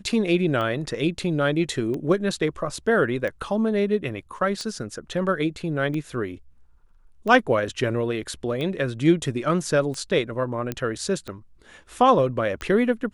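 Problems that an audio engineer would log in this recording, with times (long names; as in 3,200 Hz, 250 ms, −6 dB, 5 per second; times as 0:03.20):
scratch tick 45 rpm −19 dBFS
0:10.72: click −13 dBFS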